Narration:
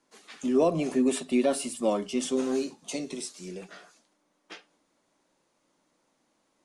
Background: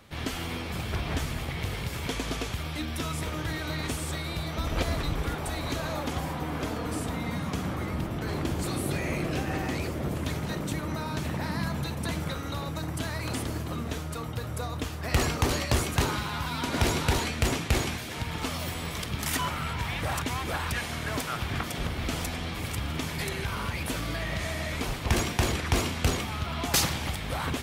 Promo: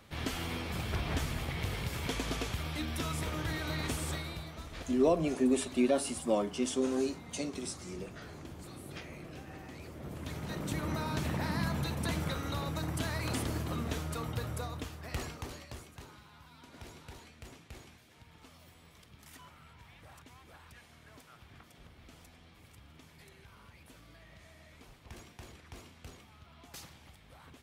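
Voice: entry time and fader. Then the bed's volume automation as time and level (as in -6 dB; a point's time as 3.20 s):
4.45 s, -3.5 dB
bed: 4.12 s -3.5 dB
4.71 s -17 dB
9.74 s -17 dB
10.85 s -2.5 dB
14.43 s -2.5 dB
15.98 s -24.5 dB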